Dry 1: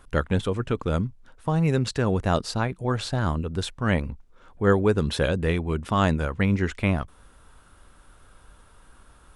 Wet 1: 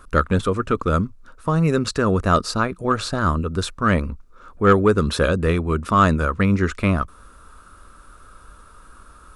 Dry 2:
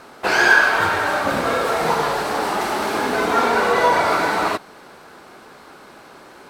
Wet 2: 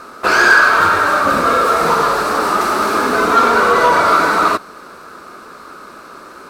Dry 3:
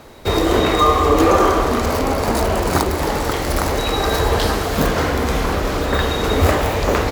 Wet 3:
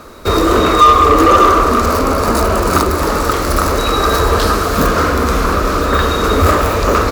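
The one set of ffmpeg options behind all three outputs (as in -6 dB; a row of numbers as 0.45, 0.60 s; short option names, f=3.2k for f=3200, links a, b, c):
-af "equalizer=f=125:t=o:w=0.33:g=-10,equalizer=f=800:t=o:w=0.33:g=-8,equalizer=f=1.25k:t=o:w=0.33:g=10,equalizer=f=2k:t=o:w=0.33:g=-5,equalizer=f=3.15k:t=o:w=0.33:g=-6,acontrast=71,volume=-1dB"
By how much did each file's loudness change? +5.0, +5.5, +5.5 LU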